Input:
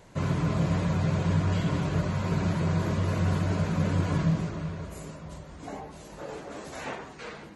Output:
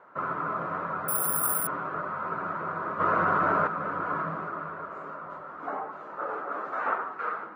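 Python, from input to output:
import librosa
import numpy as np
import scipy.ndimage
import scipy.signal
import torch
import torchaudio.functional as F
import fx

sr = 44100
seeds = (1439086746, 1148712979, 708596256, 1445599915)

y = scipy.signal.sosfilt(scipy.signal.butter(2, 370.0, 'highpass', fs=sr, output='sos'), x)
y = fx.rider(y, sr, range_db=5, speed_s=2.0)
y = fx.lowpass_res(y, sr, hz=1300.0, q=7.7)
y = fx.resample_bad(y, sr, factor=4, down='filtered', up='zero_stuff', at=(1.08, 1.67))
y = fx.env_flatten(y, sr, amount_pct=100, at=(2.99, 3.66), fade=0.02)
y = y * librosa.db_to_amplitude(-2.0)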